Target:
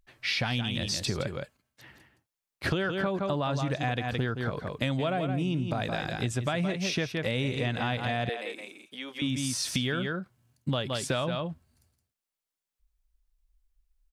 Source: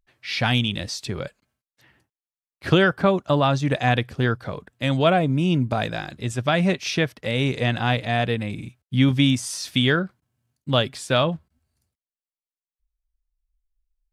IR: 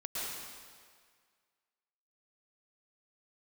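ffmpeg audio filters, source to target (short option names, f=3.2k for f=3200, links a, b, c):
-filter_complex "[0:a]aecho=1:1:168:0.355,asplit=2[a][b];[b]alimiter=limit=-16dB:level=0:latency=1:release=115,volume=2dB[c];[a][c]amix=inputs=2:normalize=0,acompressor=threshold=-25dB:ratio=6,asettb=1/sr,asplit=3[d][e][f];[d]atrim=end=8.294[g];[e]atrim=start=8.29:end=9.22,asetpts=PTS-STARTPTS,afade=t=in:d=0.004:c=qsin,afade=t=out:st=0.926:d=0.004:c=qsin,highpass=f=390:w=0.5412,highpass=f=390:w=1.3066[h];[f]atrim=start=9.216[i];[g][h]acrossfade=d=0.004:c1=hsin:c2=qsin[j];[j][i]acrossfade=d=0.004:c1=qsin:c2=hsin,volume=-2dB"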